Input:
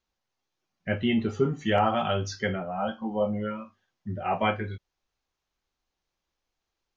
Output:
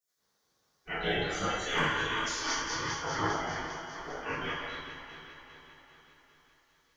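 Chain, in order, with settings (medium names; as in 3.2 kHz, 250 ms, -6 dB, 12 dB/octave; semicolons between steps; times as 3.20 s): backward echo that repeats 200 ms, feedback 73%, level -8 dB; spectral gate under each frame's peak -20 dB weak; peaking EQ 2.6 kHz -12.5 dB 0.57 oct; reverberation, pre-delay 3 ms, DRR -8 dB; trim +4 dB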